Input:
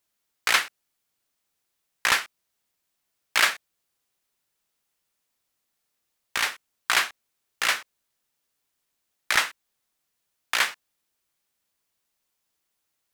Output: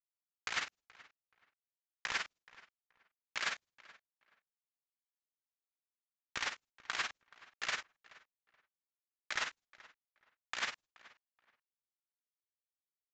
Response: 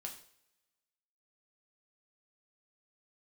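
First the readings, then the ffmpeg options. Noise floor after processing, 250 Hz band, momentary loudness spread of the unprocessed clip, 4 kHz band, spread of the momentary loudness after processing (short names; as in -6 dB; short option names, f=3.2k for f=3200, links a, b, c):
under -85 dBFS, -12.0 dB, 10 LU, -14.5 dB, 9 LU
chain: -filter_complex "[0:a]agate=range=-33dB:threshold=-44dB:ratio=3:detection=peak,lowshelf=f=170:g=5.5,areverse,acompressor=threshold=-28dB:ratio=8,areverse,tremolo=f=19:d=0.75,acrusher=bits=2:mode=log:mix=0:aa=0.000001,asplit=2[a][b];[b]adelay=427,lowpass=f=2.6k:p=1,volume=-20dB,asplit=2[c][d];[d]adelay=427,lowpass=f=2.6k:p=1,volume=0.24[e];[c][e]amix=inputs=2:normalize=0[f];[a][f]amix=inputs=2:normalize=0,aresample=16000,aresample=44100,volume=-3dB"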